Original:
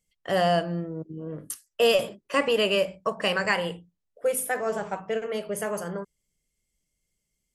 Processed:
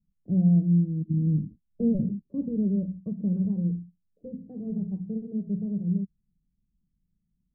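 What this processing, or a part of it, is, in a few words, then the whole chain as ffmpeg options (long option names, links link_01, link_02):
the neighbour's flat through the wall: -filter_complex "[0:a]lowpass=frequency=250:width=0.5412,lowpass=frequency=250:width=1.3066,equalizer=frequency=190:width_type=o:width=0.62:gain=6.5,asettb=1/sr,asplit=3[link_01][link_02][link_03];[link_01]atrim=end=1.084[link_04];[link_02]atrim=start=1.08:end=2.23,asetpts=PTS-STARTPTS,afade=type=in:duration=0.004:curve=qsin,afade=type=out:start_time=1.146:duration=0.004:curve=qsin,lowshelf=frequency=360:gain=8.5[link_05];[link_03]atrim=start=2.226[link_06];[link_04][link_05]acrossfade=duration=0.004:curve1=hsin:curve2=qsin[link_07];[link_07][link_06]acrossfade=duration=0.004:curve1=qsin:curve2=hsin,volume=5.5dB"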